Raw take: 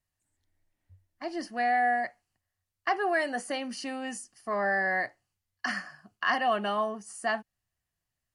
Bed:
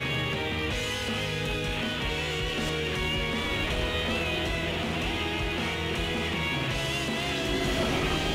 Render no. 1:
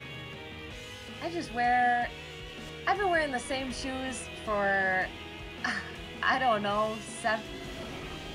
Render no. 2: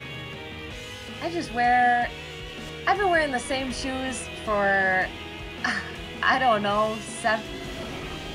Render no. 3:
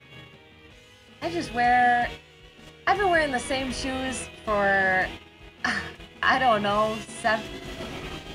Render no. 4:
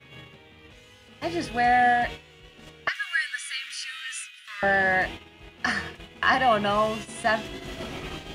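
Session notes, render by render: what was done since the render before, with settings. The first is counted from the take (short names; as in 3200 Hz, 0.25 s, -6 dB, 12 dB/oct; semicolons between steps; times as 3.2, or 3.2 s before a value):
add bed -13 dB
gain +5.5 dB
gate -34 dBFS, range -14 dB
2.88–4.63 elliptic high-pass 1400 Hz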